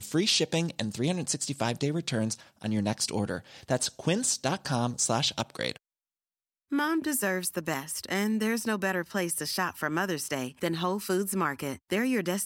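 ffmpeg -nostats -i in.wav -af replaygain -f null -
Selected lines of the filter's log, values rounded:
track_gain = +10.8 dB
track_peak = 0.172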